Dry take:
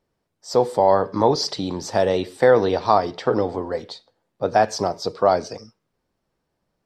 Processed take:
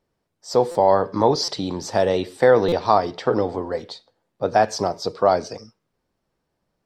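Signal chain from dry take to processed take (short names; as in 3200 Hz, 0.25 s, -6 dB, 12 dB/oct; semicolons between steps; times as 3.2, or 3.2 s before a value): stuck buffer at 0.71/1.44/2.68, samples 256, times 6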